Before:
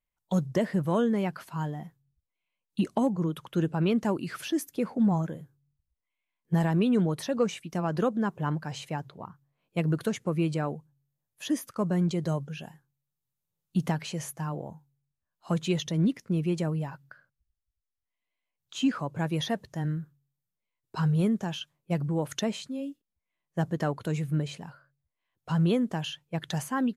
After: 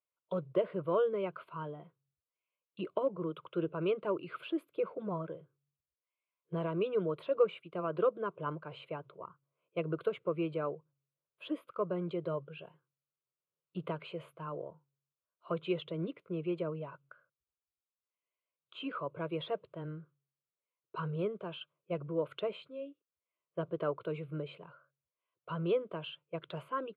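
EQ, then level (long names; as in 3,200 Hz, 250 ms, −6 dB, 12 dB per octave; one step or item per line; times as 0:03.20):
high-pass filter 250 Hz 12 dB per octave
high-frequency loss of the air 500 metres
phaser with its sweep stopped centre 1,200 Hz, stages 8
+1.5 dB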